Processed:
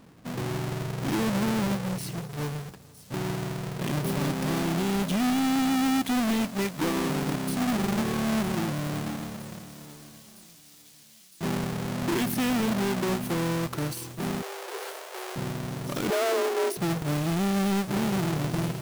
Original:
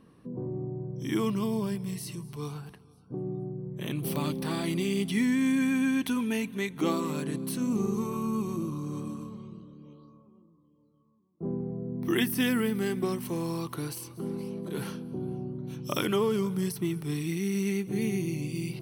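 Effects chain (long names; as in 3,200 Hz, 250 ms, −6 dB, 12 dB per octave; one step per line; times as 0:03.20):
each half-wave held at its own peak
0:14.42–0:15.36: Butterworth high-pass 380 Hz 72 dB per octave
brickwall limiter −22.5 dBFS, peak gain reduction 8.5 dB
0:16.10–0:16.77: frequency shifter +230 Hz
on a send: delay with a high-pass on its return 960 ms, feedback 84%, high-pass 5,000 Hz, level −13.5 dB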